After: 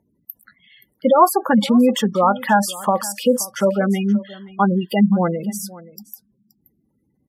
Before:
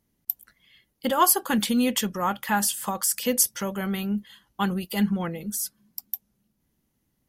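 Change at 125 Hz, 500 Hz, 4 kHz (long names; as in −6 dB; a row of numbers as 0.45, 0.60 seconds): +9.0, +12.5, +1.5 decibels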